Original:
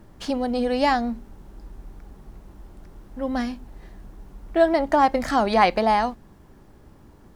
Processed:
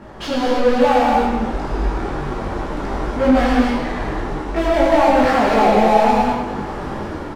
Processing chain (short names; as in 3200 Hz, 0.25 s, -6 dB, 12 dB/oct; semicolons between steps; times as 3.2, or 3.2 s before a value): median filter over 3 samples; low shelf 93 Hz +7 dB; treble ducked by the level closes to 1100 Hz, closed at -14.5 dBFS; AGC gain up to 11 dB; overdrive pedal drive 30 dB, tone 1500 Hz, clips at -9 dBFS; on a send: feedback echo 0.106 s, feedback 58%, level -10 dB; on the sum: non-linear reverb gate 0.32 s flat, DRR -3.5 dB; detuned doubles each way 21 cents; gain -1.5 dB